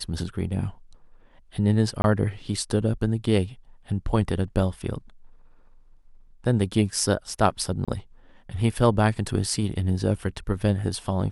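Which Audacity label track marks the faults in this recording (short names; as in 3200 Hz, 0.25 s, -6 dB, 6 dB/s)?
2.020000	2.040000	gap 21 ms
7.850000	7.880000	gap 26 ms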